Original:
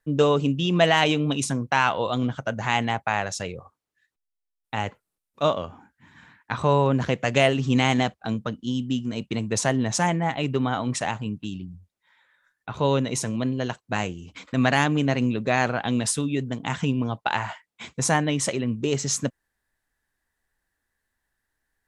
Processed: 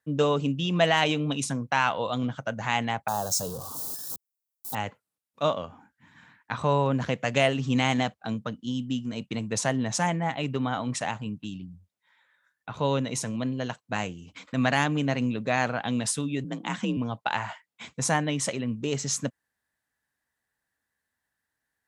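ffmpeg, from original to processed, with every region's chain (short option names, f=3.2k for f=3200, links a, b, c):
-filter_complex "[0:a]asettb=1/sr,asplit=3[a][b][c];[a]atrim=end=3.084[d];[b]atrim=start=3.08:end=4.75,asetpts=PTS-STARTPTS,afade=t=in:d=0.004:c=qsin,afade=t=out:st=1.666:d=0.004:c=qsin,aeval=exprs='val(0)+0.5*0.0251*sgn(val(0))':c=same,asuperstop=centerf=2200:order=4:qfactor=0.66,aemphasis=mode=production:type=50kf[e];[c]atrim=start=4.746[f];[d][e]acrossfade=d=0.004:c1=hsin:c2=qsin[g];[g][f]acrossfade=d=0.004:c1=qsin:c2=hsin,asettb=1/sr,asplit=3[h][i][j];[h]atrim=end=16.444[k];[i]atrim=start=16.44:end=16.97,asetpts=PTS-STARTPTS,afade=t=in:d=0.004:c=qsin,afade=t=out:st=0.526:d=0.004:c=qsin,highpass=50,afreqshift=43[l];[j]atrim=start=16.966[m];[k][l]acrossfade=d=0.004:c1=hsin:c2=qsin[n];[n][m]acrossfade=d=0.004:c1=qsin:c2=hsin,highpass=95,equalizer=f=370:w=4.9:g=-6,volume=-3dB"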